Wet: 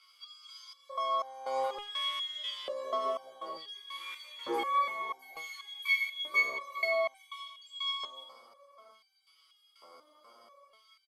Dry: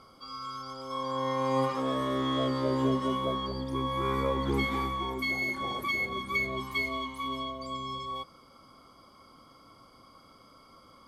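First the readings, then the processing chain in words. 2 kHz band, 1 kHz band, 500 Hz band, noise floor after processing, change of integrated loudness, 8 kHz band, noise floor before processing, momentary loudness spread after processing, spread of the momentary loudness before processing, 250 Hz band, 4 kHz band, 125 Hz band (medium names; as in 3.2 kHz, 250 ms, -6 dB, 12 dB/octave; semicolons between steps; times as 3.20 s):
-0.5 dB, -3.0 dB, -5.0 dB, -67 dBFS, -3.0 dB, -3.0 dB, -57 dBFS, 16 LU, 10 LU, -20.0 dB, +1.5 dB, under -35 dB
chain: feedback delay 85 ms, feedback 58%, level -9.5 dB; LFO high-pass square 0.56 Hz 550–2700 Hz; resonator arpeggio 4.1 Hz 85–780 Hz; trim +7.5 dB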